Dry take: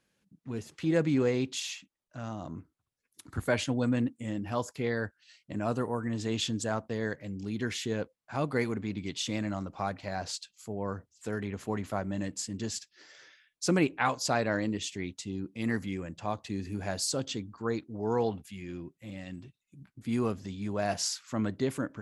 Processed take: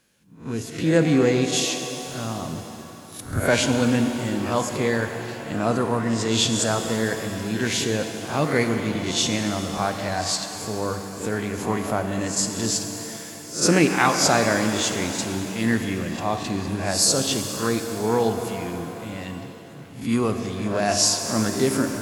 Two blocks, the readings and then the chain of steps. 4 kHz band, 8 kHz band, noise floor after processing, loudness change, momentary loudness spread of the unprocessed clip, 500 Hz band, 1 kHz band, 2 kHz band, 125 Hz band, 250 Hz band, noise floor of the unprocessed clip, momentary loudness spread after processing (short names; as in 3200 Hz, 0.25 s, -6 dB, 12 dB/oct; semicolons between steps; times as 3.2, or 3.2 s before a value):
+12.5 dB, +14.5 dB, -40 dBFS, +10.0 dB, 13 LU, +9.0 dB, +10.0 dB, +10.5 dB, +8.0 dB, +8.5 dB, -82 dBFS, 14 LU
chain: spectral swells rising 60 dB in 0.36 s; high shelf 5000 Hz +6.5 dB; shimmer reverb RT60 3.5 s, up +7 st, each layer -8 dB, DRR 6 dB; gain +7 dB